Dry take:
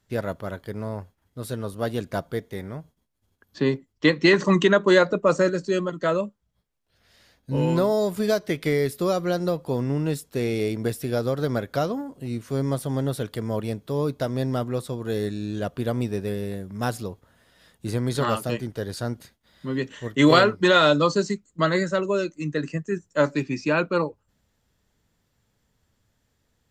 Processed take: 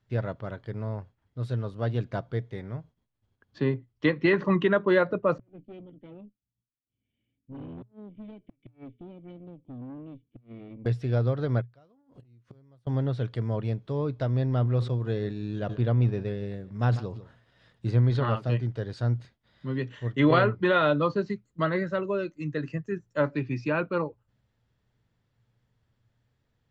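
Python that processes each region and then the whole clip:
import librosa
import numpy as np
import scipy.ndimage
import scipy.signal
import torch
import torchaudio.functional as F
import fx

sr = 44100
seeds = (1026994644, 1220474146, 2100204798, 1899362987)

y = fx.chain(x, sr, fx.formant_cascade(vowel='i'),
    fx.tube_stage(drive_db=33.0, bias=0.6),
    fx.gate_flip(shuts_db=-31.0, range_db=-33), at=(5.38, 10.86))
y = fx.chain(y, sr, fx.gate_flip(shuts_db=-26.0, range_db=-35),
    fx.over_compress(threshold_db=-46.0, ratio=-0.5), at=(11.61, 12.87))
y = fx.chain(y, sr, fx.transient(attack_db=2, sustain_db=-4),
    fx.echo_single(ms=148, db=-22.0),
    fx.sustainer(db_per_s=97.0), at=(14.43, 18.17))
y = fx.env_lowpass_down(y, sr, base_hz=2800.0, full_db=-18.0)
y = scipy.signal.sosfilt(scipy.signal.butter(2, 3900.0, 'lowpass', fs=sr, output='sos'), y)
y = fx.peak_eq(y, sr, hz=120.0, db=13.0, octaves=0.27)
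y = y * 10.0 ** (-5.0 / 20.0)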